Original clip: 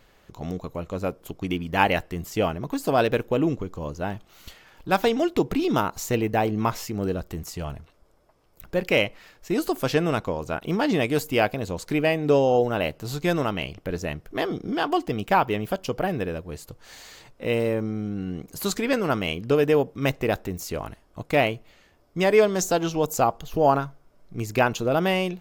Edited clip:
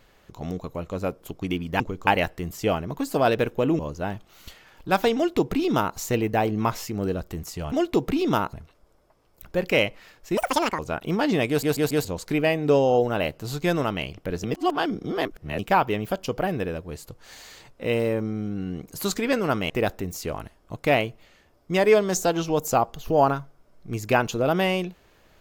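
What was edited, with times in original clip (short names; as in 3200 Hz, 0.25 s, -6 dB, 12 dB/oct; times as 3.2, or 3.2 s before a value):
3.52–3.79 move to 1.8
5.15–5.96 copy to 7.72
9.56–10.39 speed 199%
11.09 stutter in place 0.14 s, 4 plays
14.04–15.19 reverse
19.3–20.16 cut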